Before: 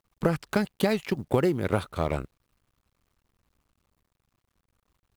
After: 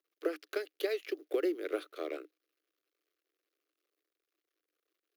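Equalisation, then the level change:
Chebyshev high-pass with heavy ripple 300 Hz, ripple 3 dB
parametric band 8,100 Hz −14 dB 0.38 octaves
phaser with its sweep stopped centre 380 Hz, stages 4
−4.0 dB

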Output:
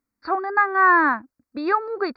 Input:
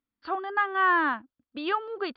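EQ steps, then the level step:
Butterworth band-reject 3,100 Hz, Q 1.6
+7.0 dB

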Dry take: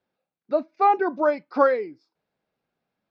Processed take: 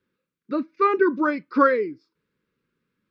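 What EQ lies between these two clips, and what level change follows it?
Butterworth band-reject 720 Hz, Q 1.1
high-shelf EQ 3,300 Hz −9 dB
+7.0 dB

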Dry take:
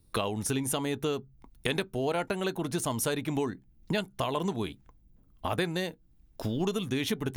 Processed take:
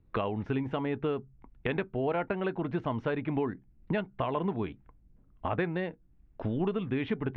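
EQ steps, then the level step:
low-pass filter 2,500 Hz 24 dB per octave
high-frequency loss of the air 81 metres
0.0 dB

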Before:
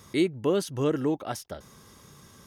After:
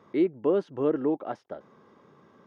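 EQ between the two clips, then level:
high-pass filter 290 Hz 12 dB per octave
head-to-tape spacing loss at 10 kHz 33 dB
high-shelf EQ 2,300 Hz −11 dB
+4.0 dB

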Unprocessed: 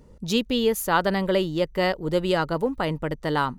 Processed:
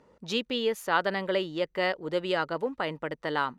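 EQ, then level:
dynamic equaliser 990 Hz, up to −6 dB, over −36 dBFS, Q 0.98
resonant band-pass 1,300 Hz, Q 0.61
+1.5 dB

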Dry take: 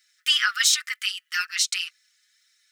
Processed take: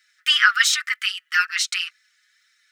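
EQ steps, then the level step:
parametric band 1,400 Hz +12 dB 2.3 octaves
−3.5 dB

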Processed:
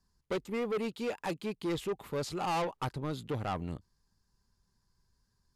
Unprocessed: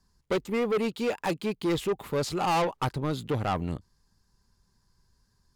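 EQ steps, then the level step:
linear-phase brick-wall low-pass 14,000 Hz
−6.5 dB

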